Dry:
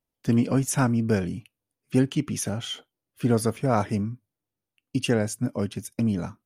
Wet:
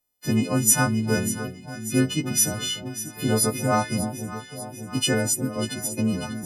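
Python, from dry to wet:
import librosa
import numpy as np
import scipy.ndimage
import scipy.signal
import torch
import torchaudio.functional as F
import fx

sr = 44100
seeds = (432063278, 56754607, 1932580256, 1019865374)

y = fx.freq_snap(x, sr, grid_st=3)
y = fx.echo_alternate(y, sr, ms=296, hz=860.0, feedback_pct=79, wet_db=-10.5)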